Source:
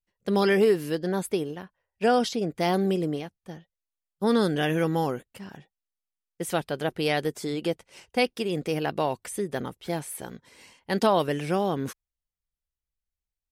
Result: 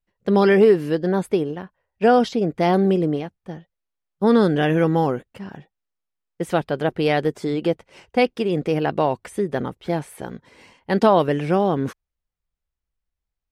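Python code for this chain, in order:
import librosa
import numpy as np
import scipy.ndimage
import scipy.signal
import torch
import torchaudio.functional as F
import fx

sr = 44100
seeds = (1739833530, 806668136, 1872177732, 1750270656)

y = fx.lowpass(x, sr, hz=1800.0, slope=6)
y = F.gain(torch.from_numpy(y), 7.0).numpy()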